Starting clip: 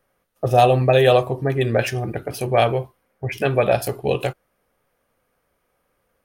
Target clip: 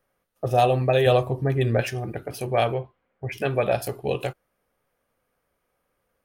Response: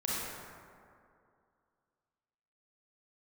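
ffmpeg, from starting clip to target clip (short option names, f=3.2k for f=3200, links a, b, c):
-filter_complex "[0:a]asettb=1/sr,asplit=3[a][b][c];[a]atrim=end=1.064[d];[b]atrim=start=1.06:end=1.81,asetpts=PTS-STARTPTS,afade=t=in:d=0.004:c=qsin,afade=t=out:st=0.746:d=0.004:c=qsin,lowshelf=f=160:g=8.5[e];[c]atrim=start=1.806[f];[d][e]acrossfade=d=0.004:c1=hsin:c2=qsin[g];[g][f]acrossfade=d=0.004:c1=qsin:c2=hsin,asettb=1/sr,asplit=3[h][i][j];[h]atrim=end=2.744[k];[i]atrim=start=2.74:end=3.28,asetpts=PTS-STARTPTS,afade=t=in:d=0.004:c=qsin,afade=t=out:st=0.536:d=0.004:c=qsin,lowpass=f=3.6k:w=0.5412,lowpass=f=3.6k:w=1.3066[l];[j]atrim=start=3.276[m];[k][l]acrossfade=d=0.004:c1=hsin:c2=qsin[n];[n][m]acrossfade=d=0.004:c1=qsin:c2=hsin,volume=-5dB"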